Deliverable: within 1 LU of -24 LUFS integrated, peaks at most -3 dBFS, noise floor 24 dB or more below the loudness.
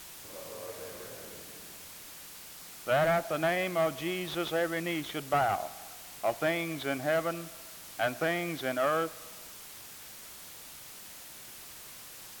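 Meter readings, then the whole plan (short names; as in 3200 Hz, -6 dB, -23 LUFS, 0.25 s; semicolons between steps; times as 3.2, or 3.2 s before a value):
noise floor -48 dBFS; noise floor target -56 dBFS; loudness -32.0 LUFS; peak -16.5 dBFS; loudness target -24.0 LUFS
-> noise print and reduce 8 dB; gain +8 dB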